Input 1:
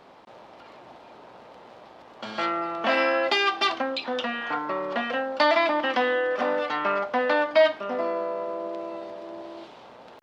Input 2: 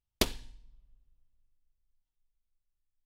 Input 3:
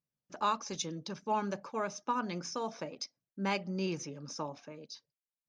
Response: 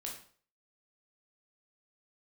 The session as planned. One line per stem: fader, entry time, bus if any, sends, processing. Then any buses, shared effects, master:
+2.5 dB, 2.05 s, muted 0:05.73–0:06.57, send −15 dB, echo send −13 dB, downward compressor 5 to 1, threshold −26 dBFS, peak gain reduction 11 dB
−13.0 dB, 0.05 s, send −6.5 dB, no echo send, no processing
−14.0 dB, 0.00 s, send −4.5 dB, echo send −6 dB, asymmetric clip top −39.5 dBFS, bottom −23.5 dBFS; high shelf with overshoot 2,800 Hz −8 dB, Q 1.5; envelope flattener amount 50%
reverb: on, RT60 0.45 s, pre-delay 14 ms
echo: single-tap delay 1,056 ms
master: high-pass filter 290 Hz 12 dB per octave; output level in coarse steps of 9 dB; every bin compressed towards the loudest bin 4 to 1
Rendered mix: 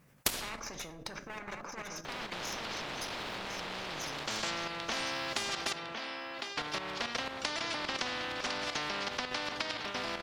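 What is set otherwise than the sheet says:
stem 2 −13.0 dB → −4.5 dB
master: missing high-pass filter 290 Hz 12 dB per octave

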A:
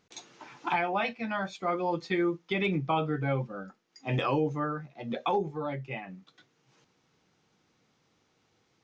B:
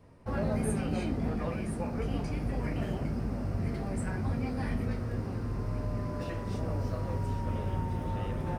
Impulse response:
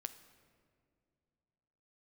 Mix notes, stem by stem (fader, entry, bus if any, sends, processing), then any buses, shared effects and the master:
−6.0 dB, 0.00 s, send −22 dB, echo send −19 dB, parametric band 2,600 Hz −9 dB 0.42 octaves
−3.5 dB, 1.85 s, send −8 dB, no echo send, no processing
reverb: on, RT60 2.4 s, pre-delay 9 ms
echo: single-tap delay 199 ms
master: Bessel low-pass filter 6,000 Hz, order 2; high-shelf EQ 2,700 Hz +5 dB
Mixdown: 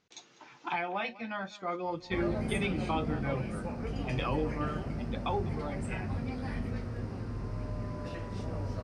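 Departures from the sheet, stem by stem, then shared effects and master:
stem A: missing parametric band 2,600 Hz −9 dB 0.42 octaves
stem B: send off

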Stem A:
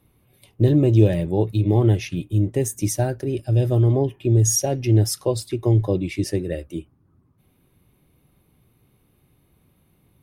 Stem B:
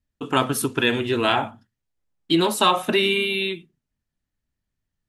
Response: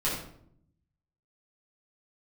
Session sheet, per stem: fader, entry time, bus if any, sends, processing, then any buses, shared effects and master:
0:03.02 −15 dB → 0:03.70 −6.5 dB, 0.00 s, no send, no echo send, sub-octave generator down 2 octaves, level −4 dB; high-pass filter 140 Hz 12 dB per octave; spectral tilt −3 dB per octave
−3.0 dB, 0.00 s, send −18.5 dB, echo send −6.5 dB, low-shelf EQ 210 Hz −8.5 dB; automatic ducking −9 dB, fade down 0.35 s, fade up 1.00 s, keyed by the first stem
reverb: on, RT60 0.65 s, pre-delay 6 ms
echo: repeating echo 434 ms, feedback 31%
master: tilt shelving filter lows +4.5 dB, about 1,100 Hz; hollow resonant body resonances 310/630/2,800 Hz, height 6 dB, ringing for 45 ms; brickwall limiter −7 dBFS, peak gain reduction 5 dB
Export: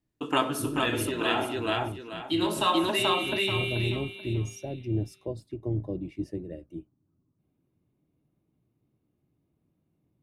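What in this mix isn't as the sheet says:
stem A −15.0 dB → −26.5 dB
master: missing tilt shelving filter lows +4.5 dB, about 1,100 Hz

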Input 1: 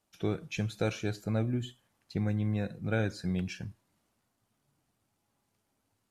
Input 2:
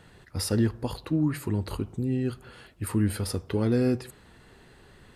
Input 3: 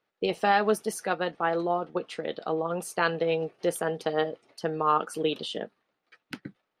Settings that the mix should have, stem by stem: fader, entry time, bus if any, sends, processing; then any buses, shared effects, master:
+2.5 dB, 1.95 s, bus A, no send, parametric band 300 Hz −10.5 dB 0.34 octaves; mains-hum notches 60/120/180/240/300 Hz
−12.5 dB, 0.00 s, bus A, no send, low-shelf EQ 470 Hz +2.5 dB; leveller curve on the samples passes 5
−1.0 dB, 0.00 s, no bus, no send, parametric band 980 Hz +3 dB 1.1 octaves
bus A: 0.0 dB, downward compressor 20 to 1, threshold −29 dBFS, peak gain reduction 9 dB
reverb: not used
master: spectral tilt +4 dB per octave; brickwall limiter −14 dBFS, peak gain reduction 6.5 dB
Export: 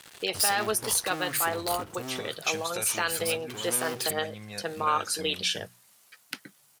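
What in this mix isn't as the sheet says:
stem 1 +2.5 dB → +9.5 dB
stem 3: missing parametric band 980 Hz +3 dB 1.1 octaves

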